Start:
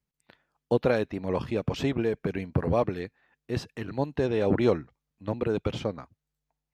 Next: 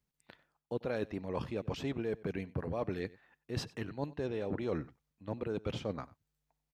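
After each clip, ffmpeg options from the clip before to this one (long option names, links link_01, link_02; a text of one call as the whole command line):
ffmpeg -i in.wav -af "areverse,acompressor=threshold=-33dB:ratio=6,areverse,aecho=1:1:94:0.0891" out.wav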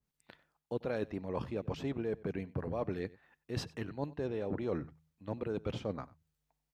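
ffmpeg -i in.wav -af "bandreject=frequency=78.8:width_type=h:width=4,bandreject=frequency=157.6:width_type=h:width=4,adynamicequalizer=threshold=0.002:dfrequency=1700:dqfactor=0.7:tfrequency=1700:tqfactor=0.7:attack=5:release=100:ratio=0.375:range=2.5:mode=cutabove:tftype=highshelf" out.wav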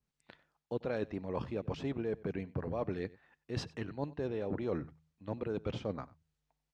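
ffmpeg -i in.wav -af "lowpass=7200" out.wav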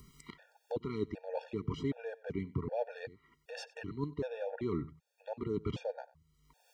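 ffmpeg -i in.wav -af "acompressor=mode=upward:threshold=-39dB:ratio=2.5,afftfilt=real='re*gt(sin(2*PI*1.3*pts/sr)*(1-2*mod(floor(b*sr/1024/470),2)),0)':imag='im*gt(sin(2*PI*1.3*pts/sr)*(1-2*mod(floor(b*sr/1024/470),2)),0)':win_size=1024:overlap=0.75,volume=2.5dB" out.wav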